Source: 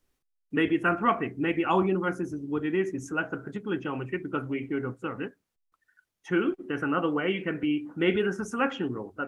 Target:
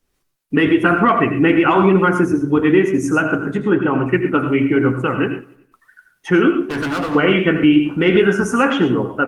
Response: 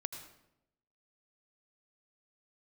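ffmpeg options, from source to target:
-filter_complex "[0:a]asettb=1/sr,asplit=3[link_01][link_02][link_03];[link_01]atrim=end=1.554[link_04];[link_02]atrim=start=1.55:end=2.45,asetpts=PTS-STARTPTS,afade=type=in:duration=0.004:curve=qsin,afade=type=out:start_time=0.896:duration=0.004:curve=qsin,equalizer=frequency=1300:width=0.52:gain=2.5[link_05];[link_03]atrim=start=2.446[link_06];[link_04][link_05]acrossfade=duration=0.004:curve1=hsin:curve2=qsin[link_07];[link_07][link_06]acrossfade=duration=0.004:curve1=qsin:curve2=hsin,asettb=1/sr,asplit=3[link_08][link_09][link_10];[link_08]atrim=end=3.574[link_11];[link_09]atrim=start=3.57:end=4.06,asetpts=PTS-STARTPTS,afade=type=in:duration=0.004:curve=qsin,afade=type=out:start_time=0.486:duration=0.004:curve=qsin,lowpass=1800[link_12];[link_10]atrim=start=4.056[link_13];[link_11][link_12]acrossfade=duration=0.004:curve1=hsin:curve2=qsin[link_14];[link_14][link_13]acrossfade=duration=0.004:curve1=qsin:curve2=hsin,acontrast=58,alimiter=limit=-14dB:level=0:latency=1:release=85,dynaudnorm=framelen=130:gausssize=3:maxgain=13dB,asettb=1/sr,asplit=3[link_15][link_16][link_17];[link_15]atrim=end=6.634[link_18];[link_16]atrim=start=6.63:end=7.15,asetpts=PTS-STARTPTS,afade=type=in:duration=0.004:curve=qsin,afade=type=out:start_time=0.516:duration=0.004:curve=qsin,asoftclip=type=hard:threshold=-17.5dB[link_19];[link_17]atrim=start=7.146[link_20];[link_18][link_19]acrossfade=duration=0.004:curve1=hsin:curve2=qsin[link_21];[link_21][link_20]acrossfade=duration=0.004:curve1=qsin:curve2=hsin,flanger=delay=4.3:depth=8:regen=-62:speed=1:shape=sinusoidal,aecho=1:1:95|190|285|380:0.0708|0.0411|0.0238|0.0138[link_22];[1:a]atrim=start_sample=2205,atrim=end_sample=6174[link_23];[link_22][link_23]afir=irnorm=-1:irlink=0,volume=3.5dB" -ar 48000 -c:a libopus -b:a 48k

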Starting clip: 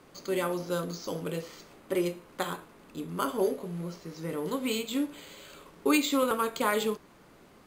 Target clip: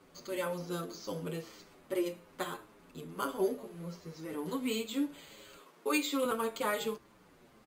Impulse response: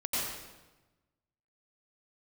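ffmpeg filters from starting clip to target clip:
-filter_complex "[0:a]asettb=1/sr,asplit=3[link_01][link_02][link_03];[link_01]atrim=end=5.574[link_04];[link_02]atrim=start=5.57:end=6.25,asetpts=PTS-STARTPTS,afade=type=in:duration=0.004:curve=qsin,afade=type=out:start_time=0.676:duration=0.004:curve=qsin,highpass=300[link_05];[link_03]atrim=start=6.246[link_06];[link_04][link_05]acrossfade=duration=0.004:curve1=hsin:curve2=qsin[link_07];[link_07][link_06]acrossfade=duration=0.004:curve1=qsin:curve2=hsin,asplit=2[link_08][link_09];[link_09]adelay=7.5,afreqshift=-1.8[link_10];[link_08][link_10]amix=inputs=2:normalize=1,volume=-2dB"

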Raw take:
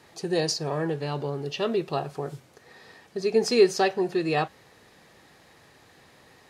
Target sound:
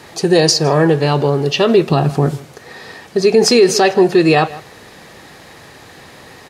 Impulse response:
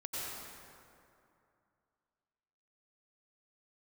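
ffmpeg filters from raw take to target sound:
-filter_complex "[0:a]asettb=1/sr,asplit=3[link_01][link_02][link_03];[link_01]atrim=end=1.904[link_04];[link_02]atrim=start=1.9:end=2.31,asetpts=PTS-STARTPTS,afade=type=in:duration=0.004:curve=qsin,afade=type=out:start_time=0.406:duration=0.004:curve=qsin,lowshelf=frequency=330:width_type=q:width=1.5:gain=6.5[link_05];[link_03]atrim=start=2.306[link_06];[link_04][link_05]acrossfade=duration=0.004:curve1=hsin:curve2=qsin[link_07];[link_07][link_06]acrossfade=duration=0.004:curve1=qsin:curve2=hsin,asplit=2[link_08][link_09];[link_09]adelay=157.4,volume=-22dB,highshelf=frequency=4000:gain=-3.54[link_10];[link_08][link_10]amix=inputs=2:normalize=0,alimiter=level_in=17dB:limit=-1dB:release=50:level=0:latency=1,volume=-1dB"

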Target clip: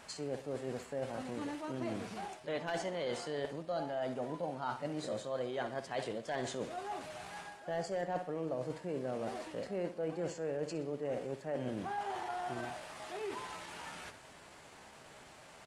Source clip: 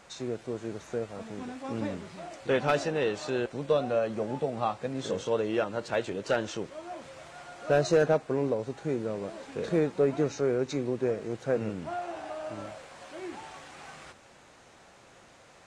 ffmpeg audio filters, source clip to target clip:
ffmpeg -i in.wav -af "asetrate=50951,aresample=44100,atempo=0.865537,aecho=1:1:62|124|186|248|310:0.211|0.0993|0.0467|0.0219|0.0103,areverse,acompressor=threshold=-35dB:ratio=6,areverse" out.wav

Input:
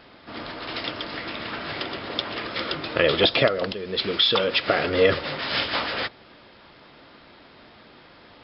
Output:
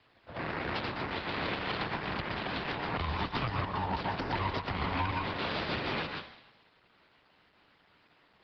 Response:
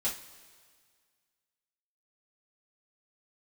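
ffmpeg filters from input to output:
-filter_complex "[0:a]lowshelf=frequency=220:gain=5.5,afwtdn=0.0251,acrossover=split=360 3100:gain=0.2 1 0.126[link_01][link_02][link_03];[link_01][link_02][link_03]amix=inputs=3:normalize=0,aeval=exprs='abs(val(0))':channel_layout=same,highpass=72,asplit=2[link_04][link_05];[1:a]atrim=start_sample=2205,asetrate=79380,aresample=44100,adelay=113[link_06];[link_05][link_06]afir=irnorm=-1:irlink=0,volume=-6dB[link_07];[link_04][link_07]amix=inputs=2:normalize=0,acrossover=split=97|210|620|4000[link_08][link_09][link_10][link_11][link_12];[link_08]acompressor=threshold=-30dB:ratio=4[link_13];[link_09]acompressor=threshold=-47dB:ratio=4[link_14];[link_10]acompressor=threshold=-40dB:ratio=4[link_15];[link_11]acompressor=threshold=-37dB:ratio=4[link_16];[link_12]acompressor=threshold=-51dB:ratio=4[link_17];[link_13][link_14][link_15][link_16][link_17]amix=inputs=5:normalize=0,alimiter=level_in=6dB:limit=-24dB:level=0:latency=1:release=235,volume=-6dB,aresample=11025,aresample=44100,volume=8.5dB" -ar 48000 -c:a libopus -b:a 16k

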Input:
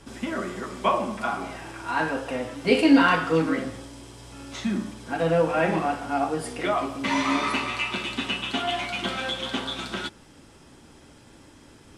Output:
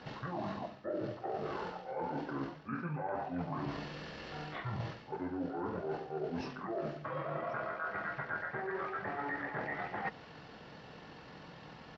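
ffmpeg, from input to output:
ffmpeg -i in.wav -filter_complex "[0:a]aemphasis=mode=reproduction:type=50kf,acrossover=split=3700[link_01][link_02];[link_02]acompressor=threshold=-49dB:ratio=4:attack=1:release=60[link_03];[link_01][link_03]amix=inputs=2:normalize=0,highpass=frequency=890:poles=1,areverse,acompressor=threshold=-42dB:ratio=16,areverse,asetrate=24046,aresample=44100,atempo=1.83401,volume=7.5dB" out.wav

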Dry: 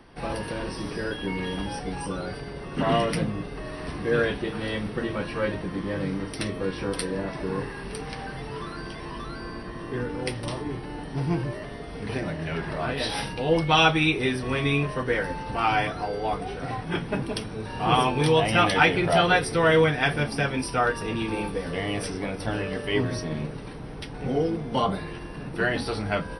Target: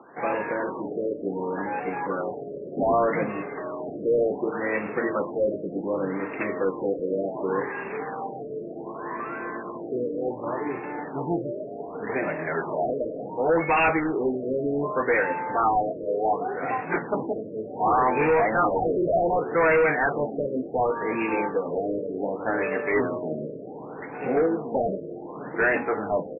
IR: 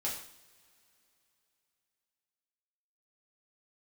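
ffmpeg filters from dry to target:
-af "highpass=350,aresample=16000,volume=23.5dB,asoftclip=hard,volume=-23.5dB,aresample=44100,afftfilt=real='re*lt(b*sr/1024,640*pow(2800/640,0.5+0.5*sin(2*PI*0.67*pts/sr)))':imag='im*lt(b*sr/1024,640*pow(2800/640,0.5+0.5*sin(2*PI*0.67*pts/sr)))':win_size=1024:overlap=0.75,volume=6.5dB"

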